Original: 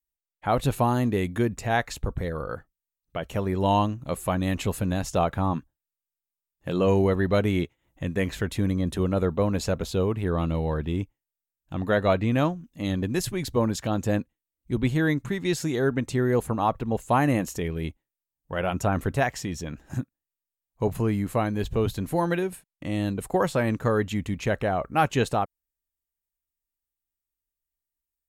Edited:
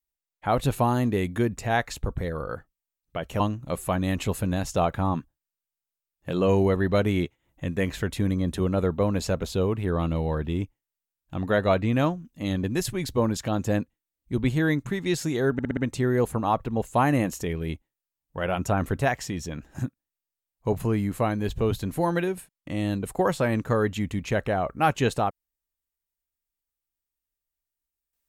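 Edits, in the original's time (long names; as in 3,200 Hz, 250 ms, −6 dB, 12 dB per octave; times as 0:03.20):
0:03.40–0:03.79: remove
0:15.92: stutter 0.06 s, 5 plays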